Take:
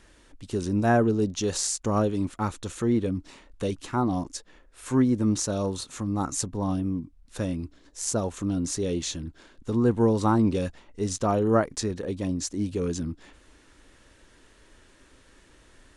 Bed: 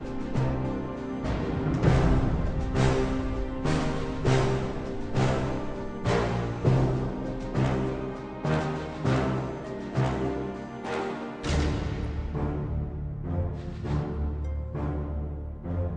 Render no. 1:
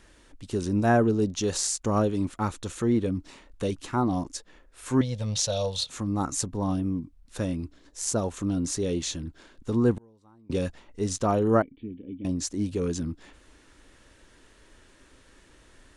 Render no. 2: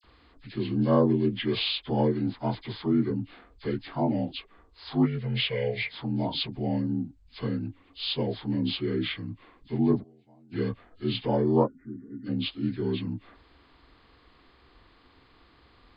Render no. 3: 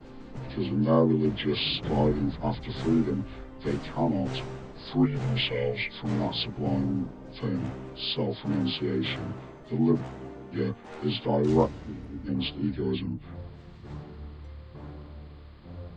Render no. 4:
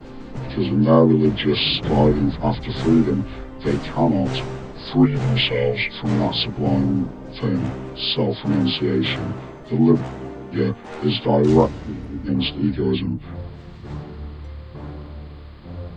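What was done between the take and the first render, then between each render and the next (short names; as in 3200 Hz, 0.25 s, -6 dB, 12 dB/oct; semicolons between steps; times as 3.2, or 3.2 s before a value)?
5.01–5.9 EQ curve 140 Hz 0 dB, 340 Hz -25 dB, 500 Hz +3 dB, 720 Hz +2 dB, 1200 Hz -8 dB, 2300 Hz +3 dB, 3500 Hz +12 dB, 8500 Hz -2 dB; 9.94–10.5 flipped gate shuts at -27 dBFS, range -35 dB; 11.62–12.25 vocal tract filter i
inharmonic rescaling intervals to 79%; dispersion lows, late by 40 ms, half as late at 2300 Hz
add bed -12 dB
gain +8.5 dB; limiter -2 dBFS, peak gain reduction 2.5 dB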